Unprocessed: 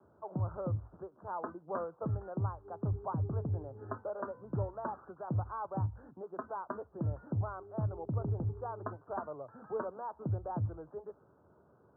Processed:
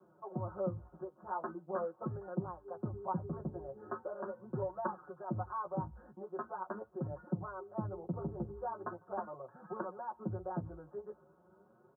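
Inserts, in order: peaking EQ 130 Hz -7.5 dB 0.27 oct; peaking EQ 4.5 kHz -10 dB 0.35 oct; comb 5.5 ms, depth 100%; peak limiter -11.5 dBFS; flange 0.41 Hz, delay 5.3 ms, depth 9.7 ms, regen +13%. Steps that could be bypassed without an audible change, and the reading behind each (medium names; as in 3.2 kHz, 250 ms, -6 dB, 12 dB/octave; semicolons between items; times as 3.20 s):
peaking EQ 4.5 kHz: input has nothing above 1.4 kHz; peak limiter -11.5 dBFS: peak at its input -19.5 dBFS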